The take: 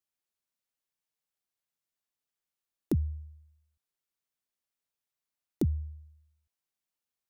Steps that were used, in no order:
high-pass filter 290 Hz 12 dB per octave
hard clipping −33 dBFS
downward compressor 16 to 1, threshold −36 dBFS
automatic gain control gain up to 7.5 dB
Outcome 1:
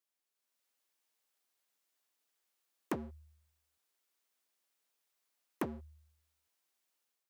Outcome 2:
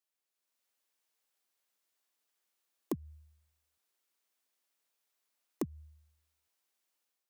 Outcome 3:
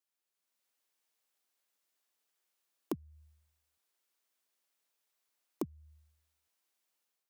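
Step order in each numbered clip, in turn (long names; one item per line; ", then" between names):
hard clipping, then high-pass filter, then downward compressor, then automatic gain control
high-pass filter, then downward compressor, then hard clipping, then automatic gain control
downward compressor, then high-pass filter, then hard clipping, then automatic gain control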